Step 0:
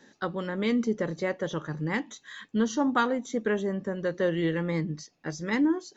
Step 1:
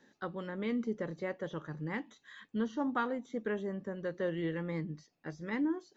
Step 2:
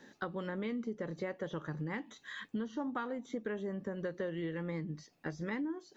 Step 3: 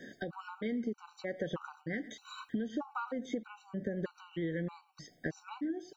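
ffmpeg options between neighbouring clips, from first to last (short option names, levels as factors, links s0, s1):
-filter_complex "[0:a]acrossover=split=3400[s0][s1];[s1]acompressor=threshold=0.00316:ratio=4:attack=1:release=60[s2];[s0][s2]amix=inputs=2:normalize=0,equalizer=f=6800:t=o:w=1.4:g=-4.5,volume=0.398"
-af "acompressor=threshold=0.00708:ratio=6,volume=2.37"
-filter_complex "[0:a]asplit=2[s0][s1];[s1]adelay=110,highpass=300,lowpass=3400,asoftclip=type=hard:threshold=0.0224,volume=0.1[s2];[s0][s2]amix=inputs=2:normalize=0,acompressor=threshold=0.00891:ratio=4,afftfilt=real='re*gt(sin(2*PI*1.6*pts/sr)*(1-2*mod(floor(b*sr/1024/760),2)),0)':imag='im*gt(sin(2*PI*1.6*pts/sr)*(1-2*mod(floor(b*sr/1024/760),2)),0)':win_size=1024:overlap=0.75,volume=2.66"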